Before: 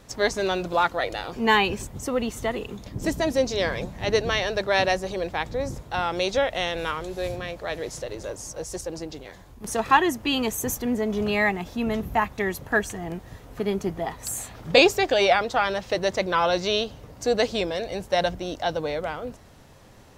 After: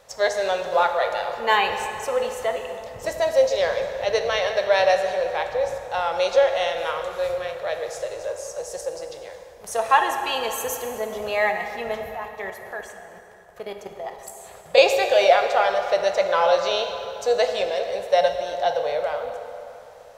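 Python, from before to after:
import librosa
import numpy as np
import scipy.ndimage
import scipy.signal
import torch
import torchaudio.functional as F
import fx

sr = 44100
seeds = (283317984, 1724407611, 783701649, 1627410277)

y = fx.low_shelf_res(x, sr, hz=400.0, db=-10.5, q=3.0)
y = fx.level_steps(y, sr, step_db=15, at=(12.1, 14.78))
y = fx.rev_plate(y, sr, seeds[0], rt60_s=3.0, hf_ratio=0.65, predelay_ms=0, drr_db=4.5)
y = y * 10.0 ** (-1.5 / 20.0)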